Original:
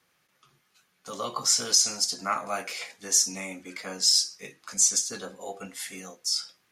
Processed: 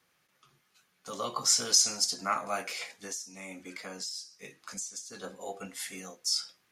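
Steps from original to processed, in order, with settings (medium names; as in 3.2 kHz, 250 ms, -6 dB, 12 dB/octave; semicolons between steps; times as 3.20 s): 2.99–5.24 s: compression 6:1, threshold -36 dBFS, peak gain reduction 18 dB; trim -2 dB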